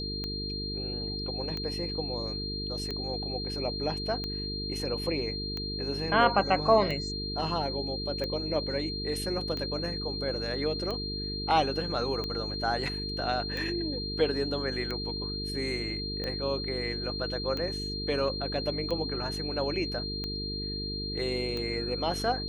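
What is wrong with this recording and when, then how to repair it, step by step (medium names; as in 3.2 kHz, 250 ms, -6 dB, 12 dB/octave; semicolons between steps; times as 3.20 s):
buzz 50 Hz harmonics 9 -37 dBFS
tick 45 rpm -21 dBFS
whine 4.2 kHz -35 dBFS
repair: de-click; de-hum 50 Hz, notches 9; band-stop 4.2 kHz, Q 30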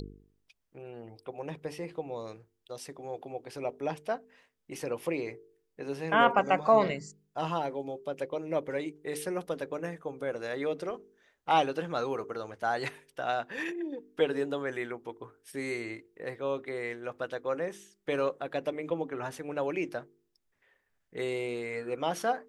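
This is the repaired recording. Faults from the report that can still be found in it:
nothing left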